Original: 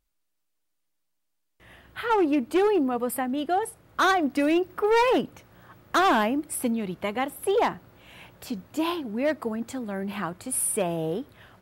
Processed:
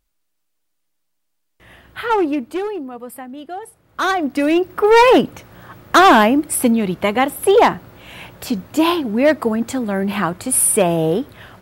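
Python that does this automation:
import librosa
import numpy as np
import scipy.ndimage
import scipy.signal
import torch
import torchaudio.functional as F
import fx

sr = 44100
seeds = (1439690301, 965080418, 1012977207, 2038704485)

y = fx.gain(x, sr, db=fx.line((2.16, 6.0), (2.83, -5.0), (3.62, -5.0), (4.1, 3.5), (5.07, 11.5)))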